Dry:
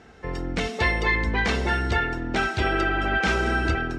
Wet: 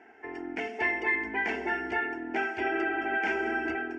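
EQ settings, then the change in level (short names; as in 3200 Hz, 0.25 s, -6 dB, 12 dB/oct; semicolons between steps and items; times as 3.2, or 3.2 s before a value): dynamic EQ 1200 Hz, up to -4 dB, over -38 dBFS, Q 0.72; BPF 320–3100 Hz; fixed phaser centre 790 Hz, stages 8; 0.0 dB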